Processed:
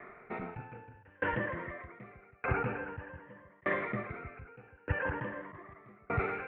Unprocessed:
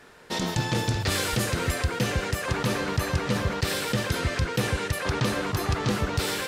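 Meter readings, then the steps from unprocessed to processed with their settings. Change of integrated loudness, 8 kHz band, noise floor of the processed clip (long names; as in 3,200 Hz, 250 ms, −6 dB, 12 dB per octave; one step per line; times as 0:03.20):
−10.0 dB, below −40 dB, −62 dBFS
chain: rippled gain that drifts along the octave scale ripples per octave 1.2, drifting +0.51 Hz, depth 12 dB
Butterworth low-pass 2,300 Hz 48 dB per octave
low-shelf EQ 290 Hz −6.5 dB
speech leveller within 4 dB 0.5 s
tremolo with a ramp in dB decaying 0.82 Hz, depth 34 dB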